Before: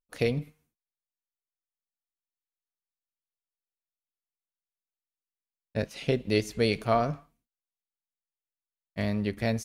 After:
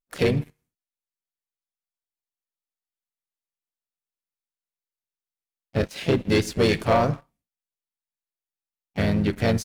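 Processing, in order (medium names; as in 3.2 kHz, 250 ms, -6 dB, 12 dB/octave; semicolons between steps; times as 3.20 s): harmony voices -4 st -4 dB, +4 st -15 dB; waveshaping leveller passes 2; trim -1.5 dB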